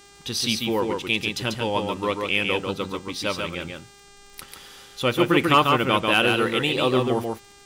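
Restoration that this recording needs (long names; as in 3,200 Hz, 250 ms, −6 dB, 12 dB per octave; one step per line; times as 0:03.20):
click removal
hum removal 401.7 Hz, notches 22
echo removal 142 ms −4 dB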